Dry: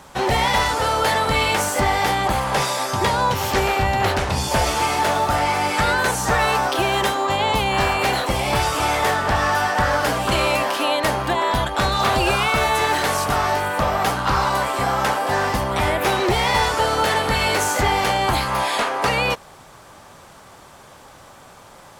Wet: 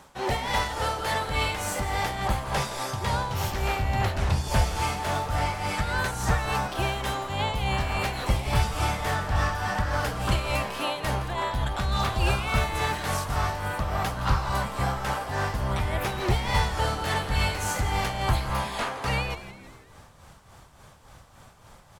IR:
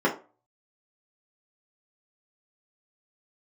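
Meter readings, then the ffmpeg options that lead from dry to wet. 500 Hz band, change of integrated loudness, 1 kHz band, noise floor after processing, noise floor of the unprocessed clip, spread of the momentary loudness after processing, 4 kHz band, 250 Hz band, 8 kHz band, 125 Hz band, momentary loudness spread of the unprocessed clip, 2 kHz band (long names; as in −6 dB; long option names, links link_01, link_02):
−10.5 dB, −8.0 dB, −9.5 dB, −52 dBFS, −45 dBFS, 4 LU, −9.0 dB, −7.5 dB, −9.0 dB, −1.0 dB, 3 LU, −9.0 dB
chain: -filter_complex "[0:a]asubboost=boost=4:cutoff=150,tremolo=f=3.5:d=0.59,asplit=6[link_01][link_02][link_03][link_04][link_05][link_06];[link_02]adelay=166,afreqshift=-130,volume=-13dB[link_07];[link_03]adelay=332,afreqshift=-260,volume=-19.2dB[link_08];[link_04]adelay=498,afreqshift=-390,volume=-25.4dB[link_09];[link_05]adelay=664,afreqshift=-520,volume=-31.6dB[link_10];[link_06]adelay=830,afreqshift=-650,volume=-37.8dB[link_11];[link_01][link_07][link_08][link_09][link_10][link_11]amix=inputs=6:normalize=0,volume=-6.5dB"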